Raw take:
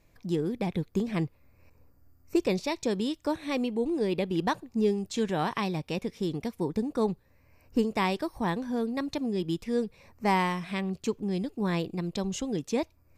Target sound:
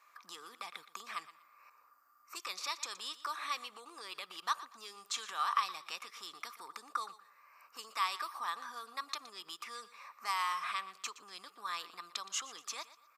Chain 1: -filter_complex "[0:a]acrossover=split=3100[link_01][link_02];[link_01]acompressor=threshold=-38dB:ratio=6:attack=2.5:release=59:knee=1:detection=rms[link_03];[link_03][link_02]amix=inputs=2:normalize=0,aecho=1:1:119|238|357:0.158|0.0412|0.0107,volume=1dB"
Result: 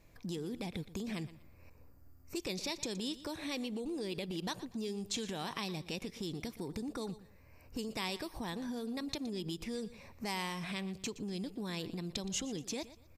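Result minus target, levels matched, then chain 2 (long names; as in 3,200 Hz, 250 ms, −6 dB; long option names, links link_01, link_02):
1,000 Hz band −9.5 dB
-filter_complex "[0:a]acrossover=split=3100[link_01][link_02];[link_01]acompressor=threshold=-38dB:ratio=6:attack=2.5:release=59:knee=1:detection=rms,highpass=frequency=1200:width_type=q:width=13[link_03];[link_03][link_02]amix=inputs=2:normalize=0,aecho=1:1:119|238|357:0.158|0.0412|0.0107,volume=1dB"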